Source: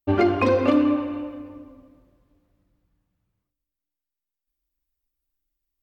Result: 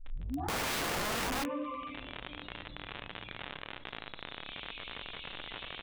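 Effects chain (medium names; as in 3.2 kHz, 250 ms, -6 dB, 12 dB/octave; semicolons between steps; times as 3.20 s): tape start-up on the opening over 1.49 s; recorder AGC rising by 8.5 dB/s; spectral noise reduction 30 dB; crackle 61 per s -43 dBFS; resampled via 8 kHz; reverberation RT60 0.50 s, pre-delay 7 ms, DRR 16 dB; integer overflow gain 30 dB; level flattener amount 70%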